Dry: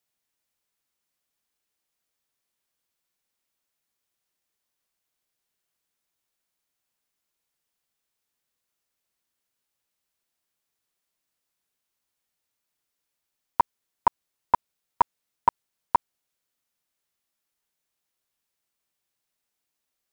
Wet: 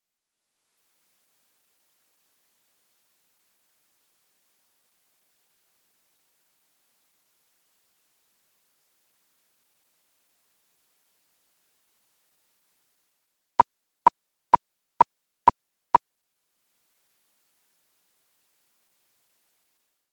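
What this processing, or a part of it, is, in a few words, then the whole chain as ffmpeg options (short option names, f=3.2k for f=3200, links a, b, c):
video call: -af "highpass=140,dynaudnorm=f=250:g=5:m=16.5dB,volume=-2dB" -ar 48000 -c:a libopus -b:a 16k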